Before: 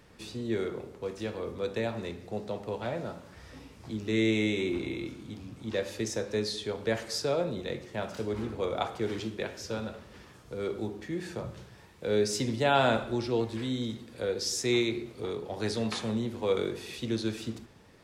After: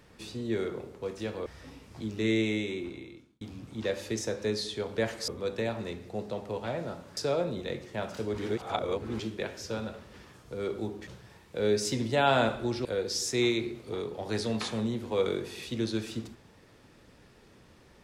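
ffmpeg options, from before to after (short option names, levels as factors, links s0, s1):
-filter_complex "[0:a]asplit=9[s0][s1][s2][s3][s4][s5][s6][s7][s8];[s0]atrim=end=1.462[s9];[s1]atrim=start=3.348:end=5.3,asetpts=PTS-STARTPTS,afade=t=out:st=0.792:d=1.16[s10];[s2]atrim=start=5.3:end=7.172,asetpts=PTS-STARTPTS,afade=t=in:d=0.004:c=hsin[s11];[s3]atrim=start=1.458:end=3.352[s12];[s4]atrim=start=7.168:end=8.382[s13];[s5]atrim=start=8.378:end=9.192,asetpts=PTS-STARTPTS,areverse[s14];[s6]atrim=start=9.188:end=11.072[s15];[s7]atrim=start=11.548:end=13.332[s16];[s8]atrim=start=14.158[s17];[s10][s11]concat=n=2:v=0:a=1[s18];[s9][s18]acrossfade=d=0.004:c1=hsin:c2=hsin[s19];[s19][s12]acrossfade=d=0.004:c1=hsin:c2=hsin[s20];[s20][s13]acrossfade=d=0.004:c1=hsin:c2=hsin[s21];[s21][s14]acrossfade=d=0.004:c1=hsin:c2=hsin[s22];[s22][s15]acrossfade=d=0.004:c1=hsin:c2=hsin[s23];[s23][s16]acrossfade=d=0.004:c1=hsin:c2=hsin[s24];[s24][s17]acrossfade=d=0.004:c1=hsin:c2=hsin"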